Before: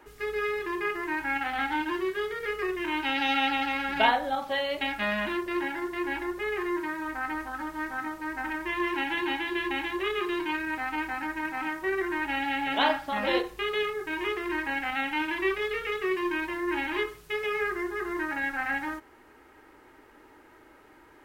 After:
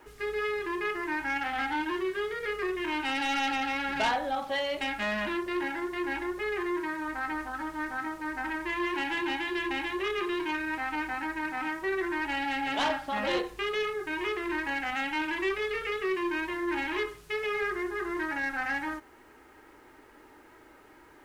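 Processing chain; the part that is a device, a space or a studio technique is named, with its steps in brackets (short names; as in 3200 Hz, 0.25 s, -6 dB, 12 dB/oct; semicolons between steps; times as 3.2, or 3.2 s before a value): compact cassette (soft clip -22.5 dBFS, distortion -15 dB; LPF 12000 Hz 12 dB/oct; wow and flutter 22 cents; white noise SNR 41 dB)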